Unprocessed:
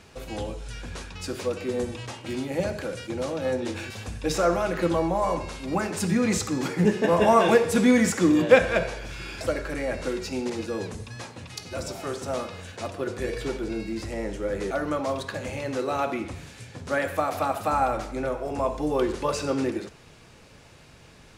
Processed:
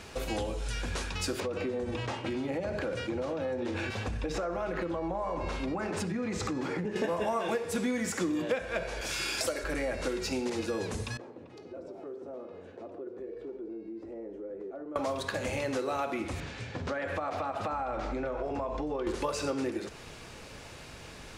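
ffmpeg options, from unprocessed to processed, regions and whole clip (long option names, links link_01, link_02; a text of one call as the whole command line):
ffmpeg -i in.wav -filter_complex "[0:a]asettb=1/sr,asplit=3[link_01][link_02][link_03];[link_01]atrim=end=1.404[link_04];[link_02]atrim=start=1.4:end=6.96,asetpts=PTS-STARTPTS,afade=type=in:duration=0.004:curve=qsin,afade=type=out:start_time=5.556:duration=0.004:curve=qsin,aemphasis=mode=reproduction:type=75fm,acompressor=threshold=-31dB:ratio=6:attack=3.2:release=140:knee=1:detection=peak[link_05];[link_03]atrim=start=6.956[link_06];[link_04][link_05]acrossfade=duration=0.004:curve1=hsin:curve2=qsin[link_07];[link_07][link_06]acrossfade=duration=0.004:curve1=qsin:curve2=hsin,asettb=1/sr,asplit=3[link_08][link_09][link_10];[link_08]atrim=end=9.014[link_11];[link_09]atrim=start=9.01:end=9.64,asetpts=PTS-STARTPTS,afade=type=in:duration=0.004:curve=qsin,afade=type=out:start_time=0.626:duration=0.004:curve=qsin,highpass=frequency=83:poles=1,bass=frequency=250:gain=-6,treble=frequency=4000:gain=9[link_12];[link_10]atrim=start=9.636[link_13];[link_11][link_12]acrossfade=duration=0.004:curve1=hsin:curve2=qsin[link_14];[link_14][link_13]acrossfade=duration=0.004:curve1=qsin:curve2=hsin,asettb=1/sr,asplit=3[link_15][link_16][link_17];[link_15]atrim=end=11.174[link_18];[link_16]atrim=start=11.17:end=14.96,asetpts=PTS-STARTPTS,afade=type=in:duration=0.004:curve=qsin,afade=type=out:start_time=3.786:duration=0.004:curve=qsin,bandpass=frequency=370:width_type=q:width=2.1,acompressor=threshold=-47dB:ratio=3:attack=3.2:release=140:knee=1:detection=peak[link_19];[link_17]atrim=start=14.956[link_20];[link_18][link_19]acrossfade=duration=0.004:curve1=hsin:curve2=qsin[link_21];[link_21][link_20]acrossfade=duration=0.004:curve1=qsin:curve2=hsin,asettb=1/sr,asplit=3[link_22][link_23][link_24];[link_22]atrim=end=16.404[link_25];[link_23]atrim=start=16.4:end=19.07,asetpts=PTS-STARTPTS,afade=type=in:duration=0.004:curve=qsin,afade=type=out:start_time=2.666:duration=0.004:curve=qsin,lowpass=5900,aemphasis=mode=reproduction:type=cd,acompressor=threshold=-33dB:ratio=6:attack=3.2:release=140:knee=1:detection=peak[link_26];[link_24]atrim=start=19.066[link_27];[link_25][link_26]acrossfade=duration=0.004:curve1=hsin:curve2=qsin[link_28];[link_28][link_27]acrossfade=duration=0.004:curve1=qsin:curve2=hsin,equalizer=frequency=140:width_type=o:width=1.4:gain=-4.5,acompressor=threshold=-35dB:ratio=6,volume=5.5dB" out.wav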